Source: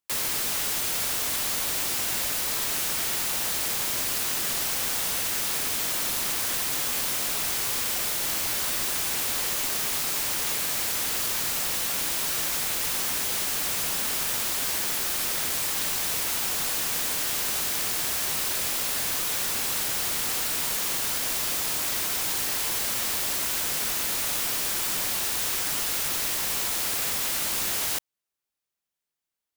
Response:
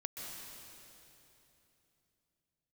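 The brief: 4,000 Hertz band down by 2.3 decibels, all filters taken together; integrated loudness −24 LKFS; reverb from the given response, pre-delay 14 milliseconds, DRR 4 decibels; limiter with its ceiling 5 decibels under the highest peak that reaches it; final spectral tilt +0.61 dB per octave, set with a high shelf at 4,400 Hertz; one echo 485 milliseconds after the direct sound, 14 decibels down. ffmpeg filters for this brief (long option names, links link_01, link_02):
-filter_complex "[0:a]equalizer=frequency=4000:width_type=o:gain=-7,highshelf=frequency=4400:gain=6.5,alimiter=limit=-14.5dB:level=0:latency=1,aecho=1:1:485:0.2,asplit=2[link_01][link_02];[1:a]atrim=start_sample=2205,adelay=14[link_03];[link_02][link_03]afir=irnorm=-1:irlink=0,volume=-3.5dB[link_04];[link_01][link_04]amix=inputs=2:normalize=0,volume=-4dB"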